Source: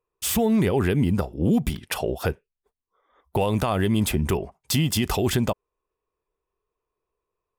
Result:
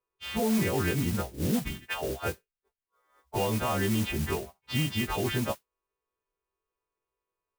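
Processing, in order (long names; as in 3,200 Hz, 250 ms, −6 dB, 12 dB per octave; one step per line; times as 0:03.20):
every partial snapped to a pitch grid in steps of 2 semitones
low-pass filter 2,900 Hz 24 dB per octave
noise that follows the level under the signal 12 dB
level −5.5 dB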